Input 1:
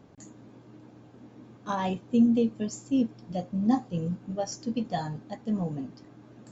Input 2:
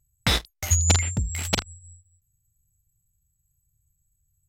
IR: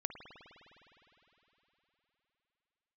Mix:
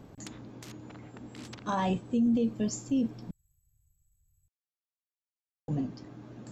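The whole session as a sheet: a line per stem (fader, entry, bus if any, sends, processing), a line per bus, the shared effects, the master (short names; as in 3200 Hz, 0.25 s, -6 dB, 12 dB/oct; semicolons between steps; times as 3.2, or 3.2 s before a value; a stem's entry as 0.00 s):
+2.5 dB, 0.00 s, muted 3.31–5.68, no send, limiter -24 dBFS, peak gain reduction 11 dB
-19.5 dB, 0.00 s, no send, treble ducked by the level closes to 560 Hz, closed at -18 dBFS; spectral compressor 10:1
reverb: off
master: low shelf 100 Hz +6.5 dB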